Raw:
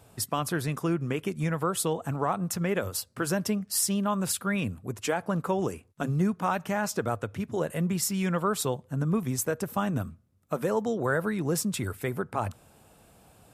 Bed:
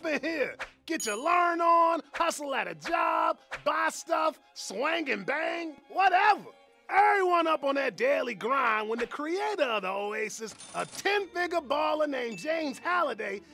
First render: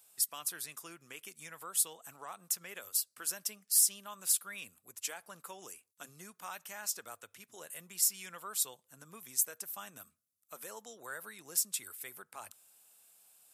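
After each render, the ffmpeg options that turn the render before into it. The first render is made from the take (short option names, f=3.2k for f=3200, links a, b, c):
-af "aderivative"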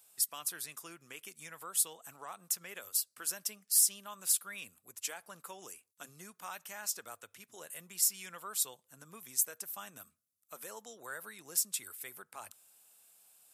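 -af anull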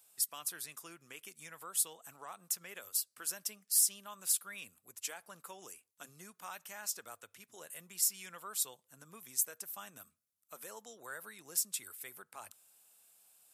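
-af "volume=-2dB"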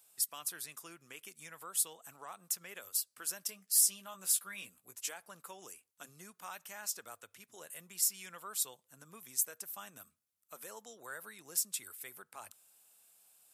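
-filter_complex "[0:a]asettb=1/sr,asplit=3[a][b][c];[a]atrim=end=3.474[d];[b]atrim=start=3.47:end=5.09,asetpts=PTS-STARTPTS,afade=t=in:d=0.004:c=qsin,afade=t=out:st=1.616:d=0.004:c=qsin,asplit=2[e][f];[f]adelay=16,volume=-5dB[g];[e][g]amix=inputs=2:normalize=0,atrim=end_sample=71442[h];[c]atrim=start=5.086[i];[d][h]acrossfade=d=0.004:c1=hsin:c2=qsin[j];[j][i]acrossfade=d=0.004:c1=qsin:c2=hsin"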